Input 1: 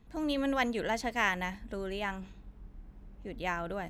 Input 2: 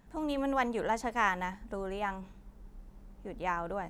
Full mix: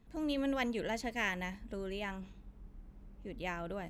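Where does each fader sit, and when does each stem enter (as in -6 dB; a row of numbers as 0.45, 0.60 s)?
-4.5, -13.0 dB; 0.00, 0.00 s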